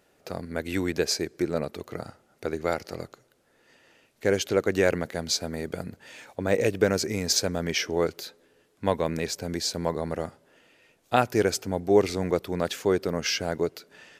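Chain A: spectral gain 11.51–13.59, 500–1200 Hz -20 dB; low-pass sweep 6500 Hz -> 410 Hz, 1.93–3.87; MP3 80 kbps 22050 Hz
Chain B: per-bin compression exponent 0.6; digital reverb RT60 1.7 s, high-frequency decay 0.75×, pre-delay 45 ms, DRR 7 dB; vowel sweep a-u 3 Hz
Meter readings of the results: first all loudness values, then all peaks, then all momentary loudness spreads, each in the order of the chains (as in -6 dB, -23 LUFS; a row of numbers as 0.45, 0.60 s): -24.0, -33.0 LUFS; -4.0, -14.5 dBFS; 16, 13 LU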